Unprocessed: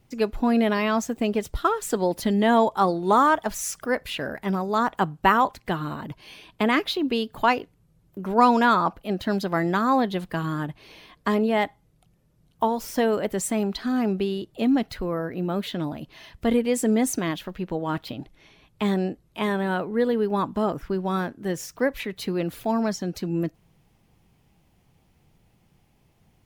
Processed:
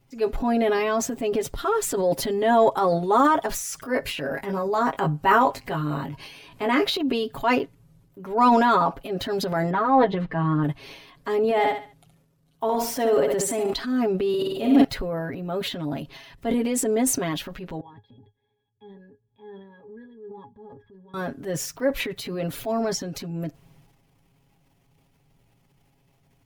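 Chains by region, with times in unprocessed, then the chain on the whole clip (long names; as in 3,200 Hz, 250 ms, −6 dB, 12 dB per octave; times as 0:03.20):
0:03.82–0:06.98: notch filter 3,500 Hz + upward compression, threshold −41 dBFS + double-tracking delay 20 ms −6 dB
0:09.70–0:10.64: low-pass filter 2,300 Hz + comb filter 6.3 ms, depth 85%
0:11.44–0:13.73: low-shelf EQ 80 Hz −10 dB + repeating echo 69 ms, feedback 33%, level −8 dB
0:14.29–0:14.84: high-shelf EQ 9,400 Hz +8.5 dB + flutter between parallel walls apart 8.5 metres, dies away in 1.3 s
0:17.80–0:21.14: output level in coarse steps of 17 dB + resonances in every octave G#, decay 0.12 s
whole clip: comb filter 7.3 ms, depth 75%; dynamic equaliser 490 Hz, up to +5 dB, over −30 dBFS, Q 0.89; transient designer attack −5 dB, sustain +8 dB; level −4 dB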